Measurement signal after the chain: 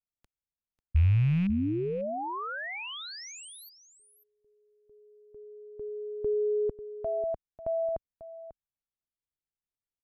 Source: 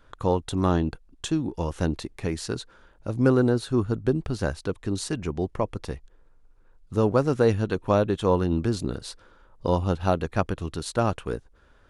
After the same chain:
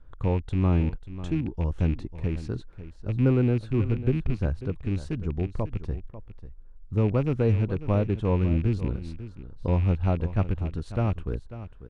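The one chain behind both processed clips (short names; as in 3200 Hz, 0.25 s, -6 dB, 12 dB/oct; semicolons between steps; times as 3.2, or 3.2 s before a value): rattling part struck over -29 dBFS, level -21 dBFS; RIAA curve playback; echo 0.544 s -14 dB; gain -9 dB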